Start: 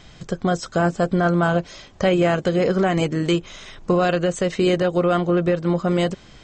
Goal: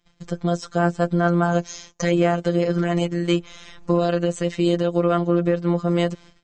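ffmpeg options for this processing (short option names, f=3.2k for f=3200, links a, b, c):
-filter_complex "[0:a]asettb=1/sr,asplit=3[a][b][c];[a]atrim=end=1.524[d];[b]atrim=start=1.52:end=2.11,asetpts=PTS-STARTPTS,afade=t=in:d=0.004:c=qsin,afade=t=out:st=0.586:d=0.004:c=qsin,lowpass=f=6.5k:t=q:w=6.2[e];[c]atrim=start=2.106[f];[d][e]acrossfade=d=0.004:c1=hsin:c2=qsin[g];[g][f]acrossfade=d=0.004:c1=qsin:c2=hsin,agate=range=-23dB:threshold=-42dB:ratio=16:detection=peak,afftfilt=real='hypot(re,im)*cos(PI*b)':imag='0':win_size=1024:overlap=0.75"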